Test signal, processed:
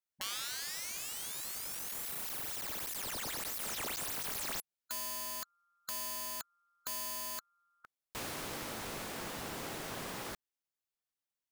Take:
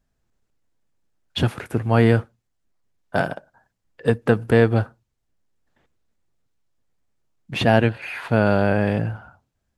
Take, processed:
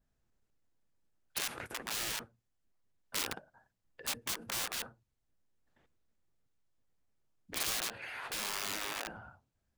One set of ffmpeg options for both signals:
ffmpeg -i in.wav -af "aeval=exprs='(mod(7.94*val(0)+1,2)-1)/7.94':channel_layout=same,afftfilt=real='re*lt(hypot(re,im),0.1)':imag='im*lt(hypot(re,im),0.1)':win_size=1024:overlap=0.75,adynamicequalizer=threshold=0.00794:dfrequency=1900:dqfactor=0.7:tfrequency=1900:tqfactor=0.7:attack=5:release=100:ratio=0.375:range=2:mode=cutabove:tftype=highshelf,volume=-6.5dB" out.wav

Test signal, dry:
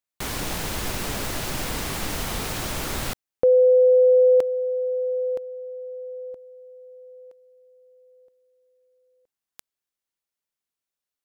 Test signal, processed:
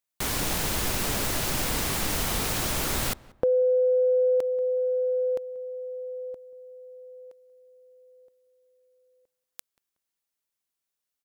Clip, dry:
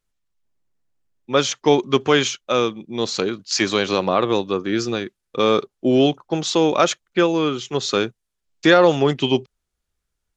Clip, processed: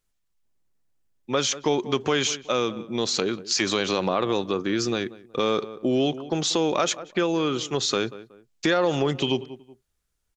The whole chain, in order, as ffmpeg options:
ffmpeg -i in.wav -filter_complex "[0:a]highshelf=frequency=5800:gain=4.5,asplit=2[link_01][link_02];[link_02]adelay=185,lowpass=frequency=1600:poles=1,volume=-21dB,asplit=2[link_03][link_04];[link_04]adelay=185,lowpass=frequency=1600:poles=1,volume=0.33[link_05];[link_01][link_03][link_05]amix=inputs=3:normalize=0,acompressor=threshold=-24dB:ratio=2.5:attack=16:release=53:knee=1:detection=rms" out.wav

